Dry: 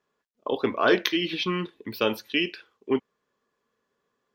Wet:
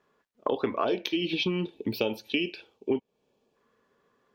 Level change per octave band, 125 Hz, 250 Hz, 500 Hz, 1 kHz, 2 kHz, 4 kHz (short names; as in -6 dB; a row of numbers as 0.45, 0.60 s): 0.0, -2.0, -3.0, -4.5, -7.0, -4.0 dB